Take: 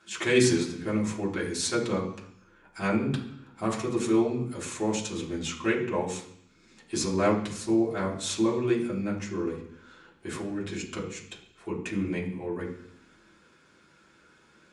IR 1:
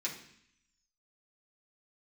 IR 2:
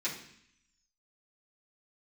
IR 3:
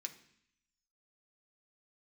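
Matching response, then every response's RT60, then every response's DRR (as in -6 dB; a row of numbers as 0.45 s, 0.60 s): 1; 0.65 s, 0.65 s, 0.65 s; -5.5 dB, -10.5 dB, 4.0 dB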